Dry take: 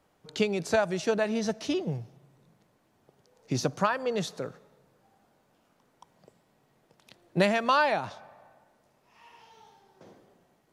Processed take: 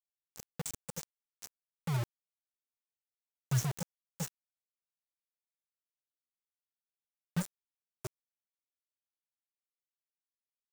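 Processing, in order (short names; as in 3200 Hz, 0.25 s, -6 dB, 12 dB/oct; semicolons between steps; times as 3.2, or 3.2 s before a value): ripple EQ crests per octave 1, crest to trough 9 dB; FFT band-reject 190–5400 Hz; bit-crush 6-bit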